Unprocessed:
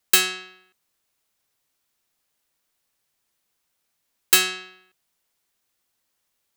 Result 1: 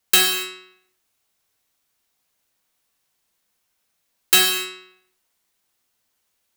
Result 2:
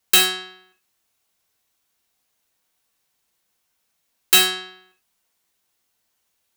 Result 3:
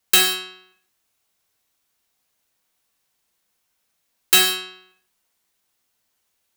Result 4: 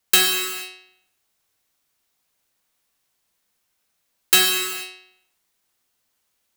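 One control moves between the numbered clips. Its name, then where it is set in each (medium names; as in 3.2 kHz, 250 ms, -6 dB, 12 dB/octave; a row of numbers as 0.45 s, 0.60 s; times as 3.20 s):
gated-style reverb, gate: 300 ms, 120 ms, 200 ms, 510 ms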